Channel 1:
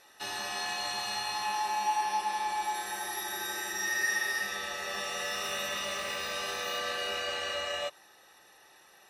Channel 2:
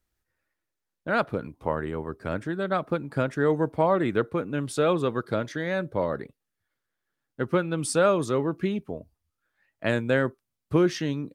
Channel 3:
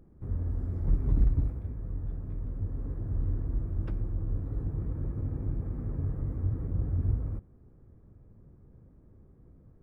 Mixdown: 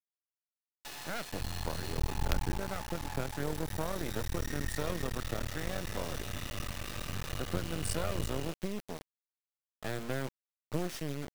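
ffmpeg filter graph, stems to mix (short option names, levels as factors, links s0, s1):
-filter_complex "[0:a]highshelf=f=8200:g=-8,acompressor=threshold=0.00562:ratio=2.5,adelay=650,volume=1.19[s0];[1:a]volume=0.631[s1];[2:a]adelay=1100,volume=0.596[s2];[s0][s1][s2]amix=inputs=3:normalize=0,acrossover=split=140|3000[s3][s4][s5];[s4]acompressor=threshold=0.02:ratio=2.5[s6];[s3][s6][s5]amix=inputs=3:normalize=0,acrusher=bits=4:dc=4:mix=0:aa=0.000001"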